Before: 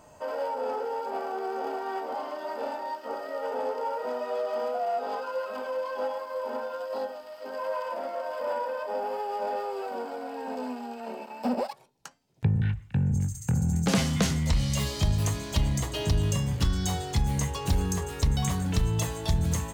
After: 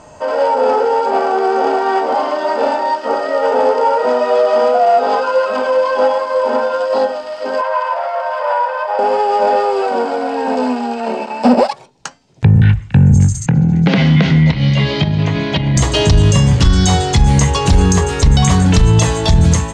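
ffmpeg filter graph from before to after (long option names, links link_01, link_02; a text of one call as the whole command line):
ffmpeg -i in.wav -filter_complex "[0:a]asettb=1/sr,asplit=3[link_01][link_02][link_03];[link_01]atrim=end=7.614[link_04];[link_02]atrim=start=7.61:end=8.99,asetpts=PTS-STARTPTS,afade=type=in:duration=0.004:curve=qsin,afade=type=out:start_time=1.376:duration=0.004:curve=qsin,highpass=frequency=690:width=0.5412,highpass=frequency=690:width=1.3066,aemphasis=mode=reproduction:type=75fm[link_05];[link_03]atrim=start=8.986[link_06];[link_04][link_05]acrossfade=duration=0.004:curve1=hsin:curve2=qsin[link_07];[link_07][link_06]acrossfade=duration=0.004:curve1=qsin:curve2=hsin,asettb=1/sr,asplit=3[link_08][link_09][link_10];[link_08]atrim=end=13.464[link_11];[link_09]atrim=start=13.46:end=15.77,asetpts=PTS-STARTPTS,afade=type=in:duration=0.004:curve=qsin,afade=type=out:start_time=2.306:duration=0.004:curve=qsin,acompressor=threshold=-27dB:ratio=5:attack=3.2:release=140:knee=1:detection=peak,highpass=140,equalizer=frequency=150:width_type=q:width=4:gain=8,equalizer=frequency=300:width_type=q:width=4:gain=3,equalizer=frequency=1200:width_type=q:width=4:gain=-6,equalizer=frequency=1900:width_type=q:width=4:gain=8,lowpass=frequency=3700:width=0.5412,lowpass=frequency=3700:width=1.3066,bandreject=frequency=1800:width=8.1[link_12];[link_10]atrim=start=15.766[link_13];[link_11][link_12]acrossfade=duration=0.004:curve1=hsin:curve2=qsin[link_14];[link_14][link_13]acrossfade=duration=0.004:curve1=qsin:curve2=hsin,lowpass=frequency=8000:width=0.5412,lowpass=frequency=8000:width=1.3066,dynaudnorm=framelen=140:gausssize=5:maxgain=4.5dB,alimiter=level_in=14.5dB:limit=-1dB:release=50:level=0:latency=1,volume=-1dB" out.wav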